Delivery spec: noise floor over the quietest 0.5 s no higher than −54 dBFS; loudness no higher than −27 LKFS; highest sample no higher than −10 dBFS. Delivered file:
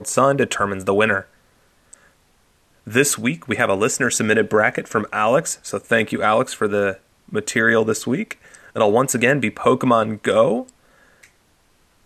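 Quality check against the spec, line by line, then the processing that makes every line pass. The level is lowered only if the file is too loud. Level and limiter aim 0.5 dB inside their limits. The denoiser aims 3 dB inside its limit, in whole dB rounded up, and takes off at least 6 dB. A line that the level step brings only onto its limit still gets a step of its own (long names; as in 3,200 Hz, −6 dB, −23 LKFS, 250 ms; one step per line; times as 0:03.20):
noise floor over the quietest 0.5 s −59 dBFS: in spec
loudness −19.0 LKFS: out of spec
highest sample −2.0 dBFS: out of spec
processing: level −8.5 dB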